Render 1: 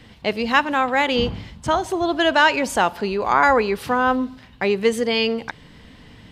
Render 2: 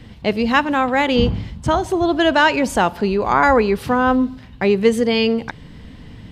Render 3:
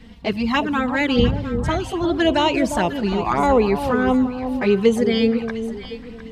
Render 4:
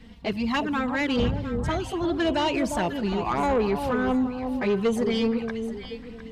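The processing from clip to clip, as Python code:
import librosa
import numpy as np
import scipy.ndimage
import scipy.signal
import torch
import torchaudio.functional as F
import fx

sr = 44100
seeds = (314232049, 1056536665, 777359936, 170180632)

y1 = fx.low_shelf(x, sr, hz=350.0, db=9.5)
y2 = fx.env_flanger(y1, sr, rest_ms=4.9, full_db=-10.5)
y2 = fx.echo_alternate(y2, sr, ms=353, hz=1000.0, feedback_pct=53, wet_db=-7)
y3 = 10.0 ** (-13.0 / 20.0) * np.tanh(y2 / 10.0 ** (-13.0 / 20.0))
y3 = y3 * 10.0 ** (-4.0 / 20.0)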